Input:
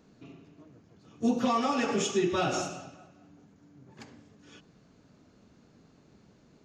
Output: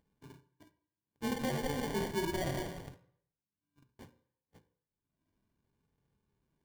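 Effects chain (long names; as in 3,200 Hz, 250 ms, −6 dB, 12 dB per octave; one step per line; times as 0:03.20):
loose part that buzzes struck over −43 dBFS, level −27 dBFS
flanger 0.66 Hz, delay 2 ms, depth 1.2 ms, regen +42%
noise gate −52 dBFS, range −60 dB
low-shelf EQ 190 Hz +12 dB
in parallel at 0 dB: brickwall limiter −32.5 dBFS, peak gain reduction 15 dB
on the sum: upward compression, threshold −41 dBFS
mains-hum notches 60/120/180/240/300/360/420 Hz
sample-rate reduction 1,300 Hz, jitter 0%
on a send at −13.5 dB: convolution reverb RT60 0.70 s, pre-delay 3 ms
on the sum: level −7.5 dB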